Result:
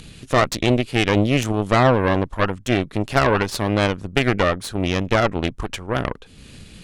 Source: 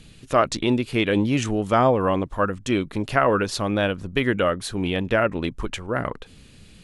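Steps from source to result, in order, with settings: upward compressor, threshold -32 dBFS; Chebyshev shaper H 4 -12 dB, 8 -20 dB, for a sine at -4 dBFS

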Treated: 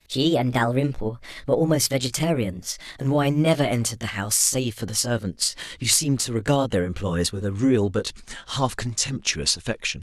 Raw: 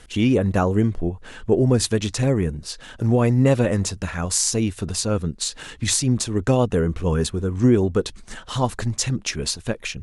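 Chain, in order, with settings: pitch bend over the whole clip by +4.5 st ending unshifted; peaking EQ 3.9 kHz +7 dB 2.8 oct; expander -39 dBFS; trim -2 dB

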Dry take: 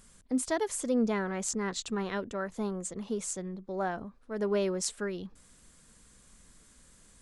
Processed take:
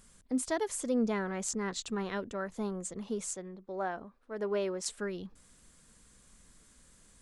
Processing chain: 3.34–4.86 s: tone controls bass -8 dB, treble -6 dB; trim -2 dB

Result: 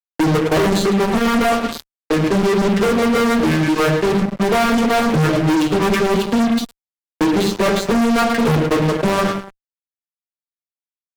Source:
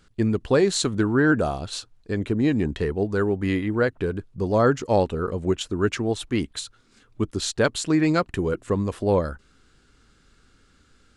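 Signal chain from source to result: vocoder on a broken chord major triad, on D#3, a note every 564 ms; tone controls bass -5 dB, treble -10 dB; hum notches 60/120/180/240/300 Hz; waveshaping leveller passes 3; treble shelf 4.4 kHz +2 dB; band-stop 360 Hz, Q 12; on a send: feedback delay 108 ms, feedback 44%, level -8 dB; on the sum: reverb removal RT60 0.63 s; in parallel at -2 dB: gain riding 2 s; on the sum: simulated room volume 31 m³, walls mixed, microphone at 0.35 m; fuzz box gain 23 dB, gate -30 dBFS; three bands compressed up and down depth 40%

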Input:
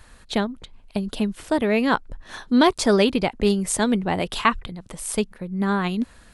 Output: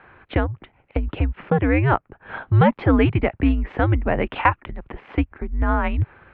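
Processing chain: mistuned SSB -140 Hz 170–2600 Hz; in parallel at +2 dB: compression, threshold -25 dBFS, peak gain reduction 13 dB; on the sum: trim -1 dB

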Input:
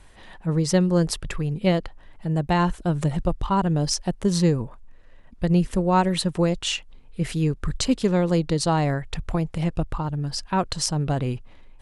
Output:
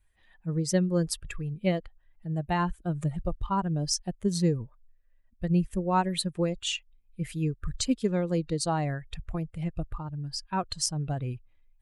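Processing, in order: expander on every frequency bin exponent 1.5; treble shelf 6.5 kHz +5.5 dB; trim -4 dB

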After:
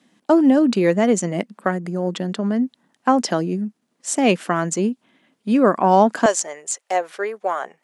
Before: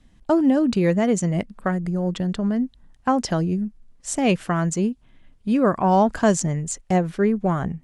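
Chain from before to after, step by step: high-pass 210 Hz 24 dB/octave, from 6.26 s 500 Hz; trim +4 dB

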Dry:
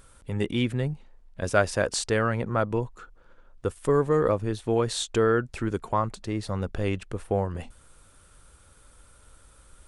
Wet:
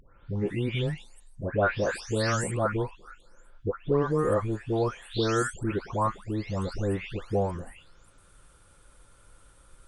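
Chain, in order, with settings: delay that grows with frequency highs late, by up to 474 ms; treble shelf 4.9 kHz -4.5 dB

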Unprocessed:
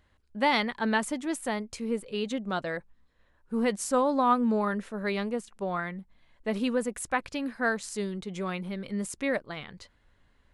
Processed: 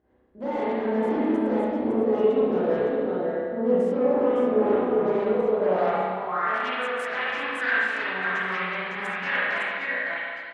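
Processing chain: chorus voices 6, 0.19 Hz, delay 17 ms, depth 1.4 ms; in parallel at -2 dB: peak limiter -24.5 dBFS, peak gain reduction 11.5 dB; on the sum: level held to a coarse grid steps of 18 dB; on a send: delay 558 ms -7 dB; on the sum: sine folder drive 12 dB, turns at -22.5 dBFS; band-pass sweep 400 Hz -> 1.7 kHz, 5.30–6.65 s; spring tank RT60 1.9 s, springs 32/44 ms, chirp 40 ms, DRR -10 dB

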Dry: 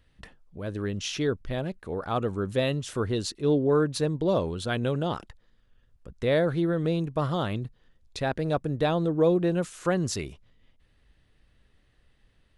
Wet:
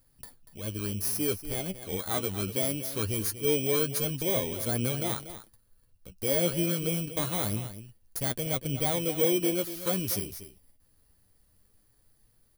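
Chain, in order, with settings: bit-reversed sample order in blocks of 16 samples; de-esser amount 35%; treble shelf 3.4 kHz +9 dB; saturation -13.5 dBFS, distortion -21 dB; flange 0.23 Hz, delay 7.5 ms, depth 3.9 ms, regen +31%; on a send: delay 239 ms -12.5 dB

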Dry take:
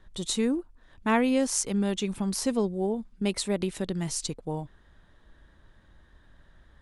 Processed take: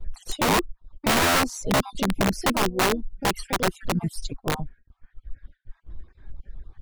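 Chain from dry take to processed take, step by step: random holes in the spectrogram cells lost 38%; reverb removal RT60 2 s; gate with hold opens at -56 dBFS; tilt EQ -3 dB/octave; in parallel at -1 dB: peak limiter -19.5 dBFS, peak gain reduction 10 dB; on the sum: flange 0.31 Hz, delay 2.2 ms, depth 2.1 ms, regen +58%; harmony voices +5 st -11 dB; integer overflow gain 18 dB; trim +2.5 dB

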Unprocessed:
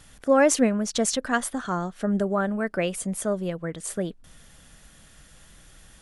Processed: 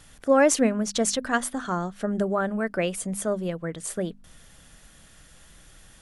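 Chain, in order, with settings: hum notches 50/100/150/200/250 Hz

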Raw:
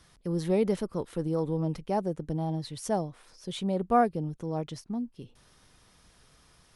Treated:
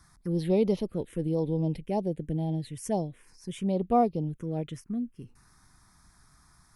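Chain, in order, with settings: 1.05–3.60 s: peaking EQ 1.3 kHz -13 dB 0.37 oct; touch-sensitive phaser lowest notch 490 Hz, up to 1.6 kHz, full sweep at -24 dBFS; trim +2 dB

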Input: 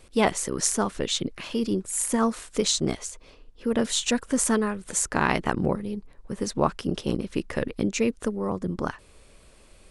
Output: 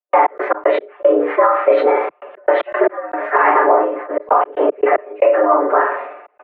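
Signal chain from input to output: early reflections 39 ms -7.5 dB, 49 ms -3 dB, 62 ms -17 dB; hard clipper -6 dBFS, distortion -46 dB; flange 0.26 Hz, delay 5.8 ms, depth 6.3 ms, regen -77%; peaking EQ 790 Hz +11 dB 2.3 oct; comb 6.4 ms, depth 97%; on a send: flutter echo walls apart 11.1 m, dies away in 0.51 s; on the sum: plain phase-vocoder stretch 0.65×; trance gate ".x.x.x..xxxxxxxx" 115 bpm -60 dB; mistuned SSB +110 Hz 240–2100 Hz; compression 6:1, threshold -21 dBFS, peak gain reduction 9 dB; loudness maximiser +14.5 dB; decay stretcher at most 63 dB/s; trim -1 dB

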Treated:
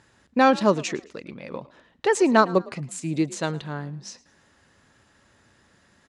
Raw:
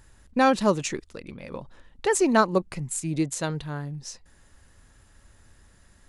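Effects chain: band-pass 150–5700 Hz; frequency-shifting echo 109 ms, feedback 34%, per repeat +45 Hz, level -21 dB; trim +2.5 dB

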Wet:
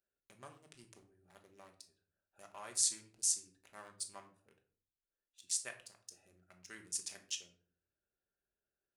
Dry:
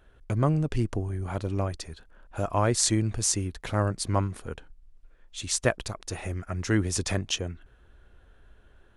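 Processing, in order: local Wiener filter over 41 samples; differentiator; on a send: reverberation RT60 0.50 s, pre-delay 5 ms, DRR 4 dB; on the sum: trim -6 dB

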